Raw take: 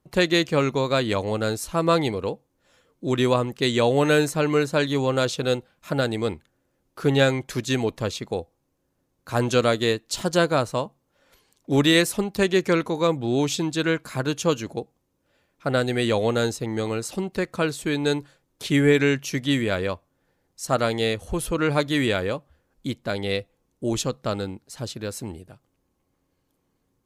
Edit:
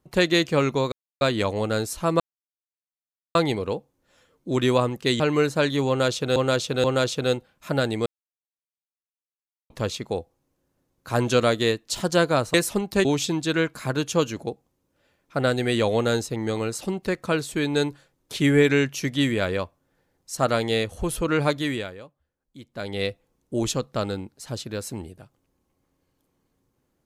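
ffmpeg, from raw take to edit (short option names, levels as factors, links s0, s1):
-filter_complex "[0:a]asplit=12[s0][s1][s2][s3][s4][s5][s6][s7][s8][s9][s10][s11];[s0]atrim=end=0.92,asetpts=PTS-STARTPTS,afade=t=out:st=0.916:d=0.004:c=hsin,apad=pad_dur=0.29[s12];[s1]atrim=start=0.92:end=1.91,asetpts=PTS-STARTPTS,afade=t=in:d=0.004:c=hsin,afade=t=out:st=0.986:d=0.004:c=hsin,apad=pad_dur=1.15[s13];[s2]atrim=start=1.91:end=3.762,asetpts=PTS-STARTPTS,afade=t=in:d=0.004:c=hsin[s14];[s3]atrim=start=4.368:end=5.532[s15];[s4]atrim=start=5.048:end=5.532[s16];[s5]atrim=start=5.048:end=6.27,asetpts=PTS-STARTPTS,afade=t=out:st=1.218:d=0.004:c=hsin[s17];[s6]atrim=start=6.27:end=7.91,asetpts=PTS-STARTPTS,volume=0[s18];[s7]atrim=start=7.91:end=10.752,asetpts=PTS-STARTPTS,afade=t=in:d=0.004:c=hsin[s19];[s8]atrim=start=11.968:end=12.482[s20];[s9]atrim=start=13.348:end=22.25,asetpts=PTS-STARTPTS,afade=t=out:st=8.412:d=0.49:silence=0.16788[s21];[s10]atrim=start=22.25:end=22.9,asetpts=PTS-STARTPTS,volume=0.168[s22];[s11]atrim=start=22.9,asetpts=PTS-STARTPTS,afade=t=in:d=0.49:silence=0.16788[s23];[s12][s13][s14]concat=n=3:v=0:a=1[s24];[s24][s15]acrossfade=d=0.004:c1=hsin:c2=hsin[s25];[s25][s16]acrossfade=d=0.004:c1=hsin:c2=hsin[s26];[s17][s18][s19]concat=n=3:v=0:a=1[s27];[s26][s27]acrossfade=d=0.004:c1=hsin:c2=hsin[s28];[s28][s20]acrossfade=d=0.004:c1=hsin:c2=hsin[s29];[s21][s22][s23]concat=n=3:v=0:a=1[s30];[s29][s30]acrossfade=d=0.004:c1=hsin:c2=hsin"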